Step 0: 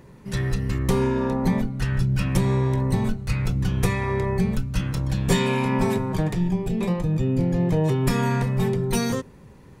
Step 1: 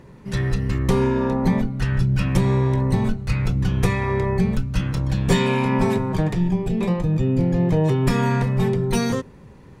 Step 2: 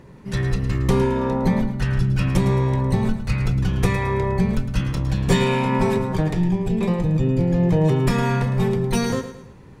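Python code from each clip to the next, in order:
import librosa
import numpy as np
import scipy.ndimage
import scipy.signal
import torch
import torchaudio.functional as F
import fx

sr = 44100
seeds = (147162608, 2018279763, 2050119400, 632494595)

y1 = fx.high_shelf(x, sr, hz=8400.0, db=-9.5)
y1 = y1 * 10.0 ** (2.5 / 20.0)
y2 = fx.echo_feedback(y1, sr, ms=109, feedback_pct=40, wet_db=-11.5)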